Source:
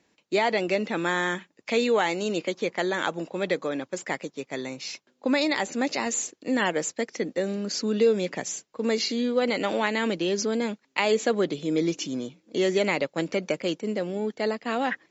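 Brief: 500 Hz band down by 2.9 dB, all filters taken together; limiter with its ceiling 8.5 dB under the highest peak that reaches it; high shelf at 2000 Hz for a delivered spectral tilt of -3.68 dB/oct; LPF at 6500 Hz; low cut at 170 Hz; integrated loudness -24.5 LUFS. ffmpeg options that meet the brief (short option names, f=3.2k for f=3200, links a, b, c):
-af "highpass=170,lowpass=6.5k,equalizer=f=500:t=o:g=-3,highshelf=f=2k:g=-6,volume=7dB,alimiter=limit=-13.5dB:level=0:latency=1"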